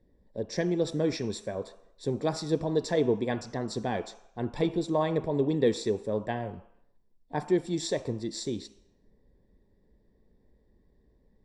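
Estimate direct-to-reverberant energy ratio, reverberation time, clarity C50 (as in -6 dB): 10.5 dB, 0.75 s, 14.5 dB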